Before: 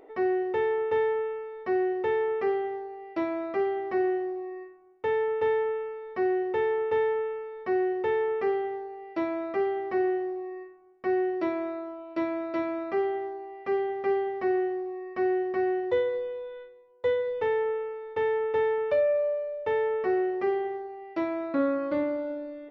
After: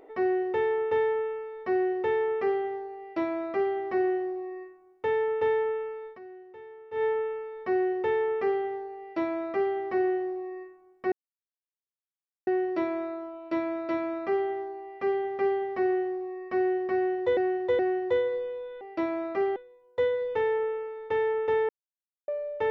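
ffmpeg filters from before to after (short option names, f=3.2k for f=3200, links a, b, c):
-filter_complex "[0:a]asplit=10[a][b][c][d][e][f][g][h][i][j];[a]atrim=end=6.19,asetpts=PTS-STARTPTS,afade=t=out:st=6.06:d=0.13:silence=0.105925[k];[b]atrim=start=6.19:end=6.91,asetpts=PTS-STARTPTS,volume=-19.5dB[l];[c]atrim=start=6.91:end=11.12,asetpts=PTS-STARTPTS,afade=t=in:d=0.13:silence=0.105925,afade=t=out:st=4.206:d=0.004:c=hsin,apad=pad_dur=1.35[m];[d]atrim=start=11.12:end=16.022,asetpts=PTS-STARTPTS,afade=t=in:d=0.004:c=hsin[n];[e]atrim=start=15.598:end=16.022[o];[f]atrim=start=15.598:end=16.622[p];[g]atrim=start=2.998:end=3.752[q];[h]atrim=start=16.618:end=18.75,asetpts=PTS-STARTPTS,afade=t=out:st=2.128:d=0.004:c=hsin[r];[i]atrim=start=18.75:end=19.34,asetpts=PTS-STARTPTS,volume=0[s];[j]atrim=start=19.34,asetpts=PTS-STARTPTS,afade=t=in:d=0.004:c=hsin[t];[k][l][m][n]concat=n=4:v=0:a=1[u];[u][o]acrossfade=d=0.004:c1=hsin:c2=hsin[v];[v][p]acrossfade=d=0.004:c1=hsin:c2=hsin[w];[w][q]acrossfade=d=0.004:c1=hsin:c2=hsin[x];[r][s][t]concat=n=3:v=0:a=1[y];[x][y]acrossfade=d=0.004:c1=hsin:c2=hsin"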